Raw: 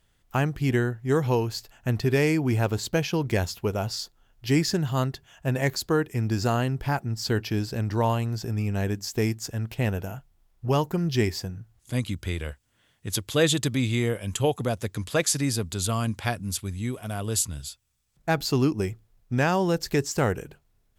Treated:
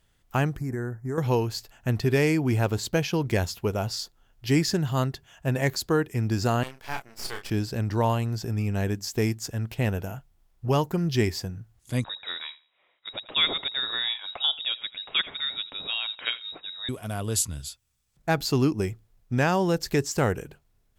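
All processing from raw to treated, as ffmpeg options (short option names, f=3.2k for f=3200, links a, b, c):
-filter_complex "[0:a]asettb=1/sr,asplit=3[a][b][c];[a]atrim=end=0.574[d];[b]atrim=start=0.57:end=1.18,asetpts=PTS-STARTPTS,afade=t=in:d=0.004:c=qsin,afade=t=out:st=0.606:d=0.004:c=qsin,asuperstop=centerf=3200:order=4:qfactor=0.8,acompressor=threshold=-27dB:ratio=5:attack=3.2:release=140:knee=1:detection=peak[e];[c]atrim=start=1.176[f];[d][e]acrossfade=d=0.004:c1=hsin:c2=qsin[g];[g][f]acrossfade=d=0.004:c1=qsin:c2=hsin,asettb=1/sr,asplit=3[h][i][j];[h]atrim=end=6.634[k];[i]atrim=start=6.63:end=7.5,asetpts=PTS-STARTPTS,afade=t=in:d=0.004:c=qsin,afade=t=out:st=0.866:d=0.004:c=qsin,highpass=670,aeval=exprs='max(val(0),0)':c=same,asplit=2[l][m];[m]adelay=31,volume=-6dB[n];[l][n]amix=inputs=2:normalize=0,atrim=end_sample=38367[o];[j]atrim=start=7.496[p];[k][o]acrossfade=d=0.004:c1=hsin:c2=qsin[q];[q][p]acrossfade=d=0.004:c1=qsin:c2=hsin,asettb=1/sr,asplit=3[r][s][t];[r]atrim=end=12.044[u];[s]atrim=start=12.04:end=16.89,asetpts=PTS-STARTPTS,afade=t=in:d=0.004:c=qsin,afade=t=out:st=4.846:d=0.004:c=qsin,lowshelf=f=280:g=-8.5,aecho=1:1:84|168:0.112|0.0269,atrim=end_sample=213885,lowpass=f=3.3k:t=q:w=0.5098,lowpass=f=3.3k:t=q:w=0.6013,lowpass=f=3.3k:t=q:w=0.9,lowpass=f=3.3k:t=q:w=2.563,afreqshift=-3900[v];[t]atrim=start=16.886[w];[u][v]acrossfade=d=0.004:c1=hsin:c2=qsin[x];[x][w]acrossfade=d=0.004:c1=qsin:c2=hsin"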